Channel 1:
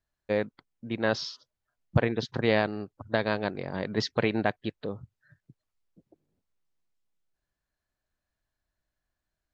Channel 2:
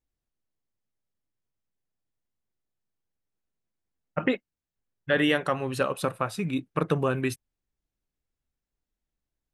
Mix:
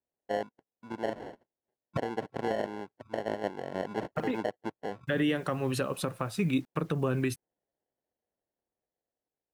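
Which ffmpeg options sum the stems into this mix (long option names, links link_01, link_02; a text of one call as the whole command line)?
ffmpeg -i stem1.wav -i stem2.wav -filter_complex "[0:a]dynaudnorm=framelen=920:gausssize=5:maxgain=3.5dB,acrusher=samples=36:mix=1:aa=0.000001,bandpass=frequency=650:width_type=q:width=0.61:csg=0,volume=-3dB[link_01];[1:a]acrossover=split=390[link_02][link_03];[link_03]acompressor=threshold=-31dB:ratio=6[link_04];[link_02][link_04]amix=inputs=2:normalize=0,acrusher=bits=9:mix=0:aa=0.000001,volume=1.5dB[link_05];[link_01][link_05]amix=inputs=2:normalize=0,alimiter=limit=-18.5dB:level=0:latency=1:release=164" out.wav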